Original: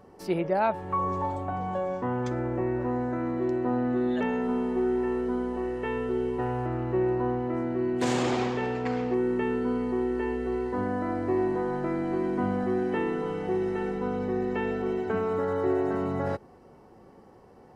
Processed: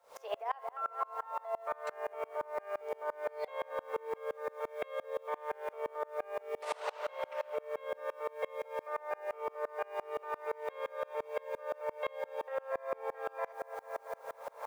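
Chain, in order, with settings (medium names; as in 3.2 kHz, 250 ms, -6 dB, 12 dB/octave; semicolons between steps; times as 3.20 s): on a send at -15.5 dB: reverberation RT60 0.75 s, pre-delay 19 ms; on the sum: tape speed +21%; steep high-pass 510 Hz 48 dB/octave; treble shelf 3.3 kHz -10 dB; feedback echo behind a low-pass 225 ms, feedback 59%, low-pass 2.1 kHz, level -10 dB; reverse; upward compressor, threshold -35 dBFS; reverse; bit crusher 10-bit; compression 4:1, threshold -36 dBFS, peak gain reduction 12 dB; sawtooth tremolo in dB swelling 5.8 Hz, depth 29 dB; trim +7.5 dB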